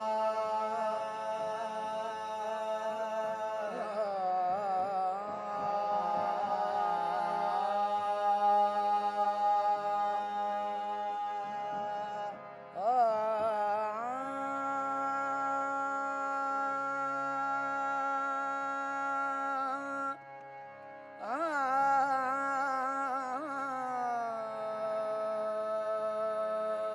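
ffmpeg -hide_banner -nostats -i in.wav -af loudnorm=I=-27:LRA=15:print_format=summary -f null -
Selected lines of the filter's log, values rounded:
Input Integrated:    -33.3 LUFS
Input True Peak:     -19.0 dBTP
Input LRA:             4.2 LU
Input Threshold:     -43.5 LUFS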